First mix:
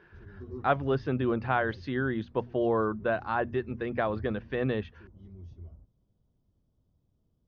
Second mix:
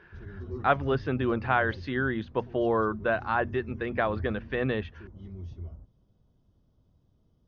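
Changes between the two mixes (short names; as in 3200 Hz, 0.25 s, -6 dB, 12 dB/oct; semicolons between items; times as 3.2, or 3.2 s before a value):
background +6.0 dB; master: add bell 2000 Hz +4.5 dB 2.2 oct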